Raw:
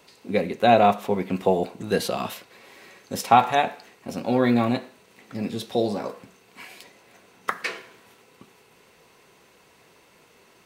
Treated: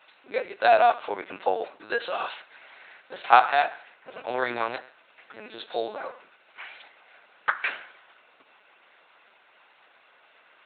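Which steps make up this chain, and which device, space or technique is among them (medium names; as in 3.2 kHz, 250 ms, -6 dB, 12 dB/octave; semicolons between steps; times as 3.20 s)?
talking toy (LPC vocoder at 8 kHz pitch kept; high-pass 670 Hz 12 dB/octave; peaking EQ 1.5 kHz +8 dB 0.24 oct); trim +1 dB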